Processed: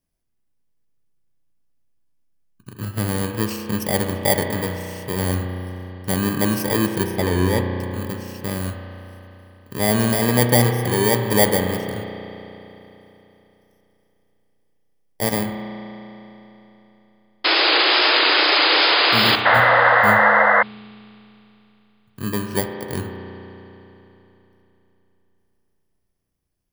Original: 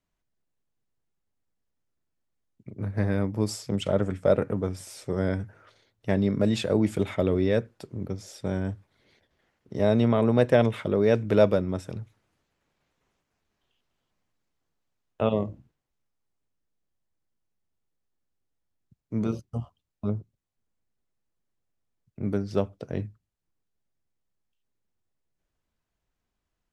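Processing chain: FFT order left unsorted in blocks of 32 samples; 7.1–7.73 high shelf 6400 Hz -9 dB; 17.44–19.36 painted sound noise 280–5100 Hz -20 dBFS; wow and flutter 42 cents; spring tank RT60 3.4 s, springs 33 ms, chirp 45 ms, DRR 4 dB; 19.45–20.63 painted sound noise 470–2100 Hz -17 dBFS; gain +3 dB

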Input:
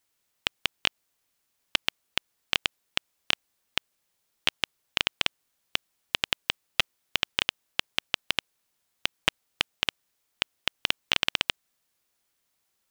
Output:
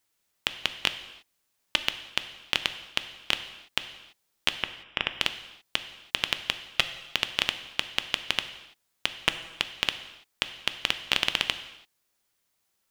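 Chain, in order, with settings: 4.63–5.08 polynomial smoothing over 25 samples; non-linear reverb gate 0.36 s falling, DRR 9 dB

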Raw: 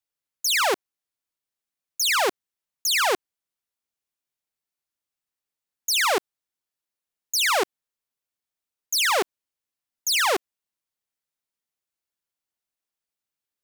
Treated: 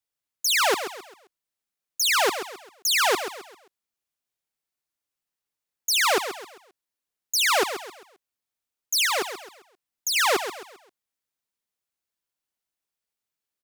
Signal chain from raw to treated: 9.05–10.16 compressor, threshold -23 dBFS, peak gain reduction 4.5 dB; on a send: feedback echo 0.132 s, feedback 37%, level -10 dB

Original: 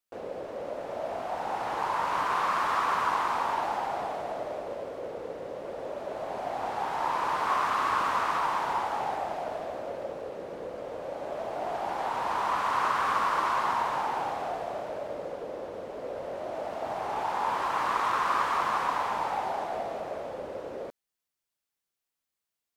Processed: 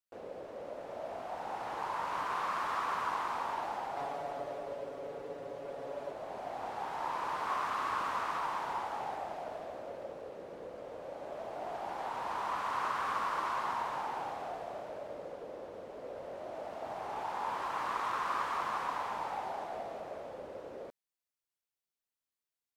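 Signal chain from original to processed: 3.96–6.11 comb 7.1 ms, depth 88%; gain -7.5 dB

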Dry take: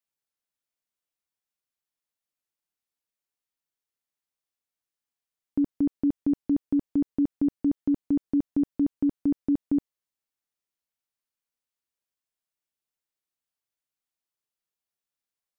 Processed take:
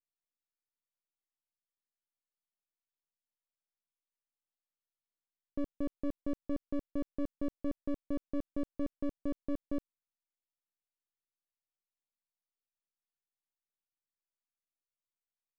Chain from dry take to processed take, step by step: half-wave rectifier; mismatched tape noise reduction decoder only; gain -7 dB

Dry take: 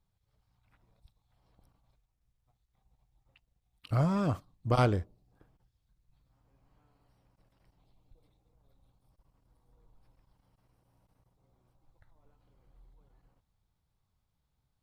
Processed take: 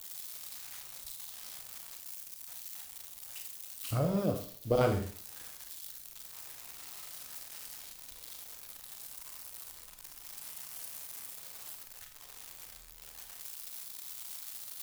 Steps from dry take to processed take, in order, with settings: switching spikes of -29 dBFS; 3.99–4.81 graphic EQ 125/500/1000/2000/8000 Hz -4/+10/-9/-5/-6 dB; Schroeder reverb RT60 0.45 s, combs from 30 ms, DRR 3.5 dB; gain -3.5 dB

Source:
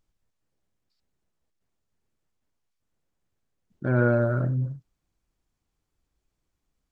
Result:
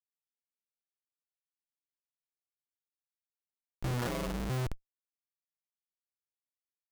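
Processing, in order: Schmitt trigger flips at -29.5 dBFS; 4.07–4.5 ring modulator 71 Hz

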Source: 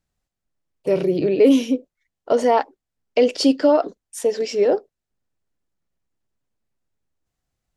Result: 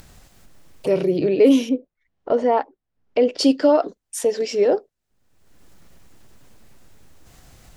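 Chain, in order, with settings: upward compressor, threshold -23 dBFS; 1.69–3.39 tape spacing loss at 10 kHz 25 dB

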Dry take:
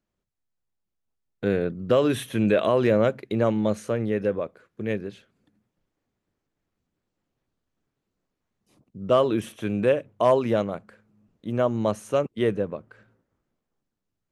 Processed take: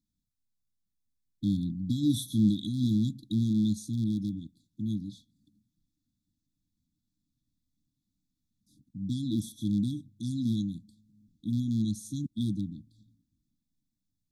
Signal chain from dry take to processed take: rattling part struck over -25 dBFS, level -26 dBFS; brick-wall FIR band-stop 320–3300 Hz

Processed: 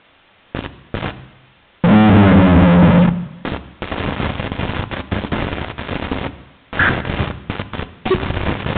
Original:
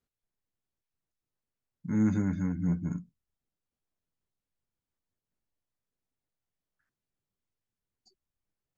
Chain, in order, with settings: recorder AGC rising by 60 dB/s; gate with hold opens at -50 dBFS; HPF 61 Hz 6 dB/oct; high shelf 2100 Hz -5.5 dB; in parallel at +2.5 dB: compressor 4:1, threshold -43 dBFS, peak gain reduction 17 dB; on the sum: sample leveller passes 3; fuzz box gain 51 dB, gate -58 dBFS; requantised 8-bit, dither triangular; air absorption 140 m; on a send at -11 dB: reverb RT60 1.0 s, pre-delay 3 ms; on the sum: downsampling 8000 Hz; gain +4.5 dB

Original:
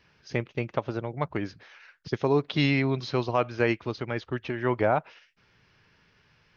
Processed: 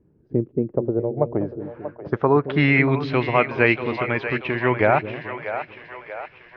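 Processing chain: low-pass sweep 330 Hz -> 2400 Hz, 0.53–2.98; split-band echo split 460 Hz, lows 0.221 s, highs 0.636 s, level -9.5 dB; gain +5 dB

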